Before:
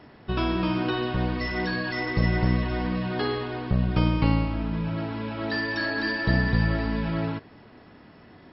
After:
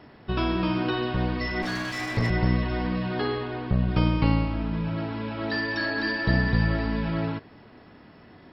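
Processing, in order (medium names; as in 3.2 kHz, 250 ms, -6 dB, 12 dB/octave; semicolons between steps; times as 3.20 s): 1.62–2.30 s: comb filter that takes the minimum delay 9.2 ms; 3.19–3.88 s: distance through air 89 m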